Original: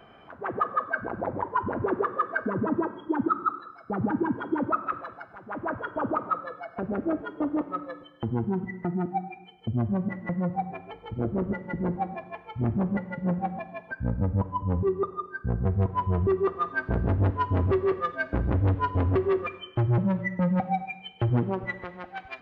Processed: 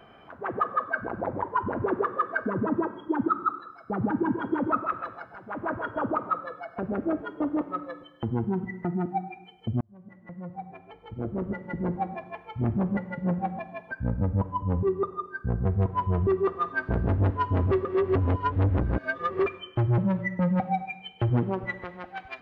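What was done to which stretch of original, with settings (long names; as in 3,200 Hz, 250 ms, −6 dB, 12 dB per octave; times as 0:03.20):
0:04.12–0:06.06: single-tap delay 137 ms −7.5 dB
0:09.81–0:12.04: fade in
0:17.85–0:19.46: reverse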